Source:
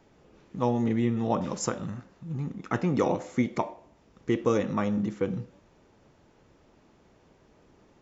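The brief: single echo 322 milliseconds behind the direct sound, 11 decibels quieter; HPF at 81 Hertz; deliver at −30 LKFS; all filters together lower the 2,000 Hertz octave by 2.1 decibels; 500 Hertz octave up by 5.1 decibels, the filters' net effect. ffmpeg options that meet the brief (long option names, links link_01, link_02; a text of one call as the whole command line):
ffmpeg -i in.wav -af "highpass=81,equalizer=frequency=500:width_type=o:gain=6,equalizer=frequency=2000:width_type=o:gain=-3,aecho=1:1:322:0.282,volume=-3.5dB" out.wav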